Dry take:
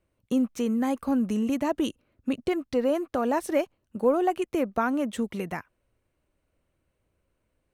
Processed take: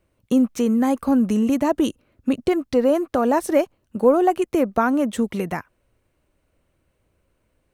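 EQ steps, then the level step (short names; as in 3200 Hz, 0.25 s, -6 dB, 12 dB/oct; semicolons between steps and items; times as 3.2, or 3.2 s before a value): dynamic EQ 2700 Hz, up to -4 dB, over -44 dBFS, Q 0.97; +7.0 dB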